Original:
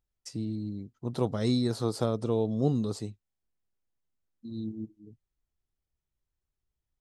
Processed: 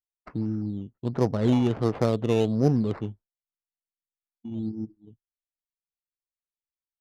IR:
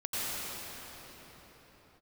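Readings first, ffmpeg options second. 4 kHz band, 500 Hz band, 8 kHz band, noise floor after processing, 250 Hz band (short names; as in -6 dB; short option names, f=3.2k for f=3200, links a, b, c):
-1.5 dB, +4.5 dB, n/a, under -85 dBFS, +5.0 dB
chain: -af "acrusher=samples=11:mix=1:aa=0.000001:lfo=1:lforange=6.6:lforate=1.4,adynamicsmooth=sensitivity=3:basefreq=1.1k,agate=range=-33dB:threshold=-45dB:ratio=3:detection=peak,volume=5dB"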